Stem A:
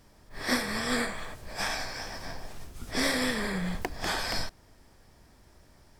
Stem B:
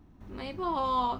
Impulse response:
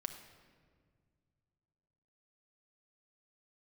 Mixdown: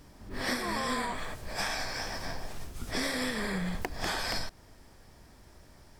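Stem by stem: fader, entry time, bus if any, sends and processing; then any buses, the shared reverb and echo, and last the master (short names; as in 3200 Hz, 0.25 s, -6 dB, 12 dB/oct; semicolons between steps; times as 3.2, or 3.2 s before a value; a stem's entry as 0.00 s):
+2.5 dB, 0.00 s, no send, dry
-1.0 dB, 0.00 s, no send, dry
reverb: off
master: compressor 5:1, threshold -29 dBFS, peak gain reduction 9.5 dB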